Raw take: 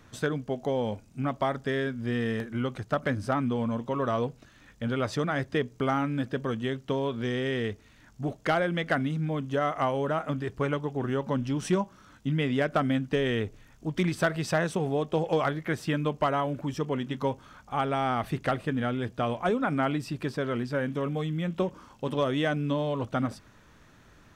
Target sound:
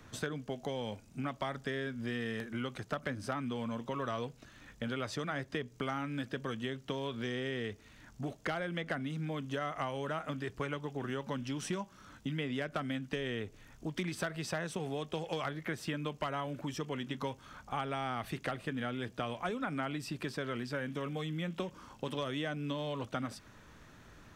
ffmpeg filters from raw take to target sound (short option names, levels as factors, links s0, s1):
-filter_complex "[0:a]acrossover=split=170|1500[s0][s1][s2];[s0]acompressor=threshold=0.00398:ratio=4[s3];[s1]acompressor=threshold=0.0126:ratio=4[s4];[s2]acompressor=threshold=0.00891:ratio=4[s5];[s3][s4][s5]amix=inputs=3:normalize=0"